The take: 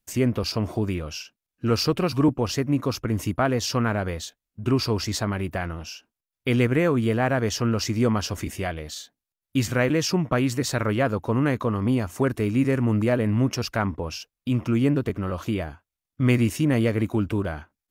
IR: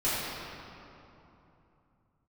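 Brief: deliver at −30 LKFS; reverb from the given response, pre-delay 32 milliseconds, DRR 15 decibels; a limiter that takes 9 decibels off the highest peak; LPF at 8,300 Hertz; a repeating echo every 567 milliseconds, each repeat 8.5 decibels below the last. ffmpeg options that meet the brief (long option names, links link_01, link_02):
-filter_complex "[0:a]lowpass=8300,alimiter=limit=-18.5dB:level=0:latency=1,aecho=1:1:567|1134|1701|2268:0.376|0.143|0.0543|0.0206,asplit=2[link_01][link_02];[1:a]atrim=start_sample=2205,adelay=32[link_03];[link_02][link_03]afir=irnorm=-1:irlink=0,volume=-26.5dB[link_04];[link_01][link_04]amix=inputs=2:normalize=0,volume=-2.5dB"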